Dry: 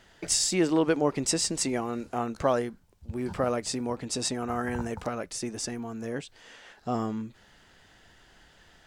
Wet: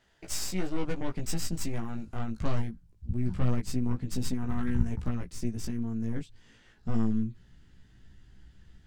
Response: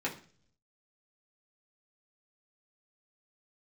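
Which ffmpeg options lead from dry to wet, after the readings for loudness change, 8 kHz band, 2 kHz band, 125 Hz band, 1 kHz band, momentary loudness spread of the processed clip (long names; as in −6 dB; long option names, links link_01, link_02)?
−4.5 dB, −10.5 dB, −8.0 dB, +6.0 dB, −11.0 dB, 7 LU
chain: -af "aeval=exprs='0.299*(cos(1*acos(clip(val(0)/0.299,-1,1)))-cos(1*PI/2))+0.0376*(cos(8*acos(clip(val(0)/0.299,-1,1)))-cos(8*PI/2))':channel_layout=same,flanger=delay=15.5:depth=2.7:speed=0.23,asubboost=boost=11.5:cutoff=190,volume=-7.5dB"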